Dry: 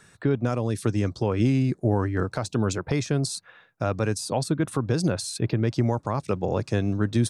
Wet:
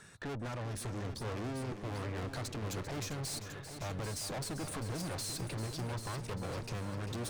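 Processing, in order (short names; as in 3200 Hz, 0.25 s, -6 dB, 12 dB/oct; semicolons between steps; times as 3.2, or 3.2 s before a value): tube stage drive 39 dB, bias 0.6; multi-head echo 0.395 s, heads first and second, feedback 43%, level -11 dB; gain +1 dB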